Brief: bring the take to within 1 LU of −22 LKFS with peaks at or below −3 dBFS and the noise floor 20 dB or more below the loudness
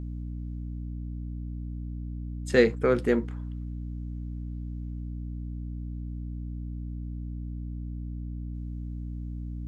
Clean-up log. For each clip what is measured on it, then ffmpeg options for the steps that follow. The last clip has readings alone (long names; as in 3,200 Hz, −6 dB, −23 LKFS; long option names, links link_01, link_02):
mains hum 60 Hz; hum harmonics up to 300 Hz; level of the hum −32 dBFS; integrated loudness −32.5 LKFS; sample peak −6.5 dBFS; target loudness −22.0 LKFS
→ -af "bandreject=frequency=60:width_type=h:width=4,bandreject=frequency=120:width_type=h:width=4,bandreject=frequency=180:width_type=h:width=4,bandreject=frequency=240:width_type=h:width=4,bandreject=frequency=300:width_type=h:width=4"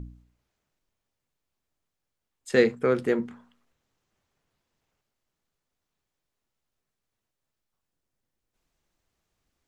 mains hum none found; integrated loudness −25.0 LKFS; sample peak −7.0 dBFS; target loudness −22.0 LKFS
→ -af "volume=3dB"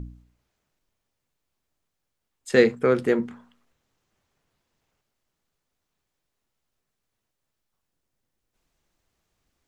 integrated loudness −22.0 LKFS; sample peak −4.0 dBFS; background noise floor −81 dBFS